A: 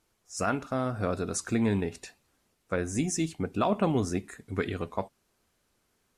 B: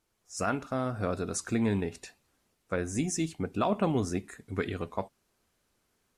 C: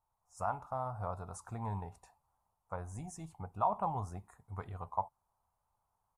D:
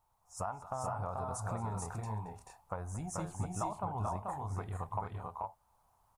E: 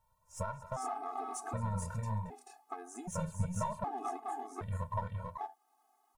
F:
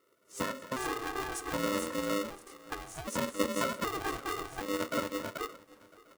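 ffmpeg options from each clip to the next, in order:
ffmpeg -i in.wav -af "dynaudnorm=framelen=110:gausssize=3:maxgain=3.5dB,volume=-5dB" out.wav
ffmpeg -i in.wav -af "firequalizer=gain_entry='entry(100,0);entry(270,-19);entry(380,-16);entry(870,11);entry(1600,-14);entry(2600,-19);entry(4200,-19);entry(9500,-8)':delay=0.05:min_phase=1,volume=-4.5dB" out.wav
ffmpeg -i in.wav -filter_complex "[0:a]acompressor=threshold=-45dB:ratio=4,asplit=2[link_01][link_02];[link_02]aecho=0:1:225|435|463:0.126|0.668|0.562[link_03];[link_01][link_03]amix=inputs=2:normalize=0,volume=8dB" out.wav
ffmpeg -i in.wav -af "aeval=exprs='if(lt(val(0),0),0.708*val(0),val(0))':channel_layout=same,afftfilt=real='re*gt(sin(2*PI*0.65*pts/sr)*(1-2*mod(floor(b*sr/1024/220),2)),0)':imag='im*gt(sin(2*PI*0.65*pts/sr)*(1-2*mod(floor(b*sr/1024/220),2)),0)':win_size=1024:overlap=0.75,volume=4.5dB" out.wav
ffmpeg -i in.wav -af "aecho=1:1:567|1134|1701:0.0891|0.0383|0.0165,aeval=exprs='val(0)*sgn(sin(2*PI*400*n/s))':channel_layout=same,volume=3.5dB" out.wav

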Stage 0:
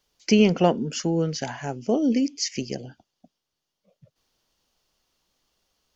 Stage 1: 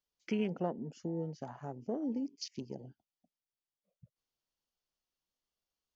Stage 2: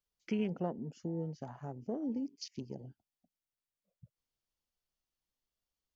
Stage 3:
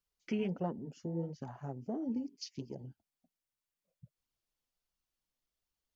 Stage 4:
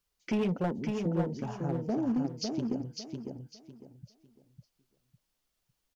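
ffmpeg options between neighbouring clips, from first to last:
ffmpeg -i in.wav -af "acompressor=threshold=-48dB:ratio=1.5,afwtdn=0.01,volume=-4dB" out.wav
ffmpeg -i in.wav -af "lowshelf=frequency=130:gain=9,volume=-2.5dB" out.wav
ffmpeg -i in.wav -af "flanger=delay=0.7:depth=7.2:regen=-31:speed=1.4:shape=sinusoidal,volume=4dB" out.wav
ffmpeg -i in.wav -filter_complex "[0:a]asoftclip=type=hard:threshold=-31.5dB,asplit=2[link_01][link_02];[link_02]aecho=0:1:553|1106|1659|2212:0.596|0.161|0.0434|0.0117[link_03];[link_01][link_03]amix=inputs=2:normalize=0,volume=7dB" out.wav

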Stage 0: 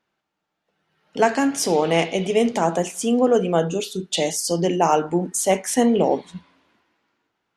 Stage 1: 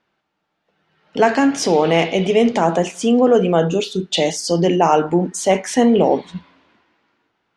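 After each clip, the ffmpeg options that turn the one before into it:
ffmpeg -i in.wav -filter_complex "[0:a]lowpass=5100,asplit=2[link_01][link_02];[link_02]alimiter=limit=-15dB:level=0:latency=1:release=14,volume=-2dB[link_03];[link_01][link_03]amix=inputs=2:normalize=0,volume=1dB" out.wav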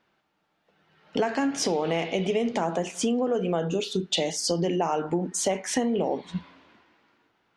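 ffmpeg -i in.wav -af "acompressor=threshold=-23dB:ratio=6" out.wav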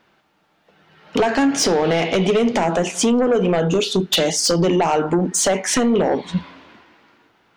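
ffmpeg -i in.wav -af "aeval=exprs='0.266*sin(PI/2*2.24*val(0)/0.266)':channel_layout=same" out.wav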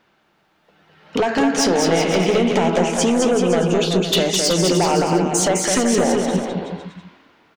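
ffmpeg -i in.wav -af "aecho=1:1:210|378|512.4|619.9|705.9:0.631|0.398|0.251|0.158|0.1,volume=-1.5dB" out.wav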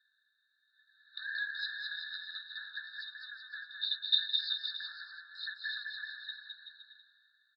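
ffmpeg -i in.wav -af "asuperpass=centerf=2600:order=12:qfactor=1.2,afftfilt=real='re*eq(mod(floor(b*sr/1024/1800),2),0)':imag='im*eq(mod(floor(b*sr/1024/1800),2),0)':win_size=1024:overlap=0.75" out.wav

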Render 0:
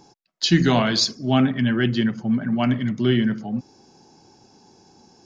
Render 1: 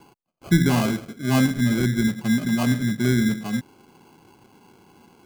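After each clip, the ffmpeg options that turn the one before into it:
ffmpeg -i in.wav -filter_complex "[0:a]lowpass=frequency=1700:width=0.5412,lowpass=frequency=1700:width=1.3066,acrossover=split=330|910[link_01][link_02][link_03];[link_02]acompressor=threshold=-35dB:ratio=6[link_04];[link_01][link_04][link_03]amix=inputs=3:normalize=0,acrusher=samples=24:mix=1:aa=0.000001,volume=1dB" out.wav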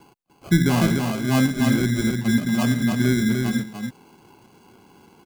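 ffmpeg -i in.wav -af "aecho=1:1:296:0.596" out.wav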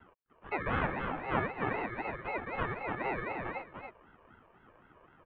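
ffmpeg -i in.wav -filter_complex "[0:a]acrossover=split=450 2100:gain=0.0891 1 0.158[link_01][link_02][link_03];[link_01][link_02][link_03]amix=inputs=3:normalize=0,highpass=frequency=190:width_type=q:width=0.5412,highpass=frequency=190:width_type=q:width=1.307,lowpass=frequency=2900:width_type=q:width=0.5176,lowpass=frequency=2900:width_type=q:width=0.7071,lowpass=frequency=2900:width_type=q:width=1.932,afreqshift=-120,aeval=exprs='val(0)*sin(2*PI*450*n/s+450*0.5/3.9*sin(2*PI*3.9*n/s))':channel_layout=same" out.wav

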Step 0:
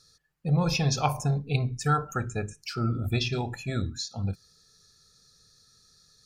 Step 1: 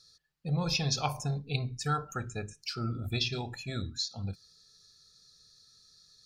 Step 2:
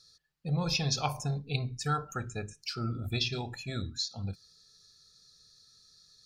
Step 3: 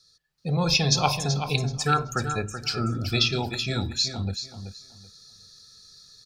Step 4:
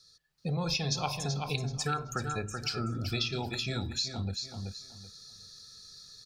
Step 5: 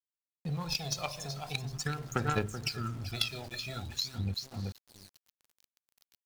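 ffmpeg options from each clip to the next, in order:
ffmpeg -i in.wav -af "equalizer=frequency=4200:width_type=o:width=1.1:gain=8.5,volume=-6.5dB" out.wav
ffmpeg -i in.wav -af anull out.wav
ffmpeg -i in.wav -filter_complex "[0:a]acrossover=split=180|1400|3700[link_01][link_02][link_03][link_04];[link_01]asoftclip=type=tanh:threshold=-36dB[link_05];[link_05][link_02][link_03][link_04]amix=inputs=4:normalize=0,dynaudnorm=framelen=250:gausssize=3:maxgain=9dB,aecho=1:1:380|760|1140:0.355|0.0781|0.0172" out.wav
ffmpeg -i in.wav -af "acompressor=threshold=-33dB:ratio=2.5" out.wav
ffmpeg -i in.wav -af "aphaser=in_gain=1:out_gain=1:delay=1.7:decay=0.61:speed=0.43:type=sinusoidal,aeval=exprs='val(0)*gte(abs(val(0)),0.0112)':channel_layout=same,aeval=exprs='0.211*(cos(1*acos(clip(val(0)/0.211,-1,1)))-cos(1*PI/2))+0.0473*(cos(3*acos(clip(val(0)/0.211,-1,1)))-cos(3*PI/2))':channel_layout=same,volume=2dB" out.wav

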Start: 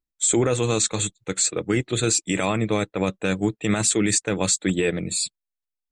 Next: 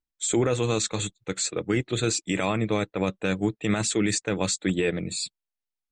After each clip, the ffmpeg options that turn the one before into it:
ffmpeg -i in.wav -af "lowpass=6400,volume=-2.5dB" out.wav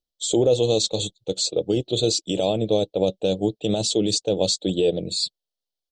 ffmpeg -i in.wav -af "firequalizer=gain_entry='entry(260,0);entry(540,10);entry(770,3);entry(1100,-17);entry(2000,-26);entry(3000,6);entry(4400,9);entry(7400,-1)':delay=0.05:min_phase=1" out.wav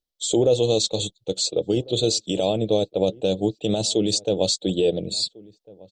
ffmpeg -i in.wav -filter_complex "[0:a]asplit=2[link_01][link_02];[link_02]adelay=1399,volume=-23dB,highshelf=frequency=4000:gain=-31.5[link_03];[link_01][link_03]amix=inputs=2:normalize=0" out.wav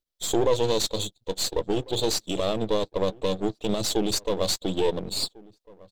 ffmpeg -i in.wav -af "aeval=exprs='if(lt(val(0),0),0.251*val(0),val(0))':channel_layout=same" out.wav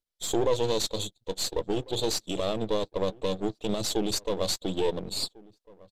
ffmpeg -i in.wav -af "aresample=32000,aresample=44100,volume=-3dB" out.wav

